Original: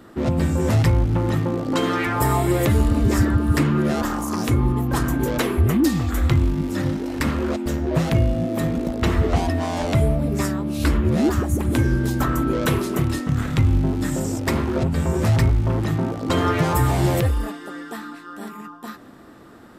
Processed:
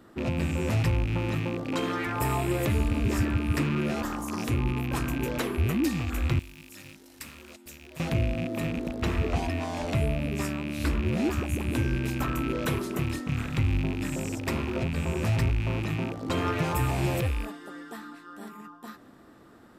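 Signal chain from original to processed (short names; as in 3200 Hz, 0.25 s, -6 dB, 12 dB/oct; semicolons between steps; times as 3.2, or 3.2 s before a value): rattling part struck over -24 dBFS, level -19 dBFS; 6.39–8 pre-emphasis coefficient 0.9; gain -8 dB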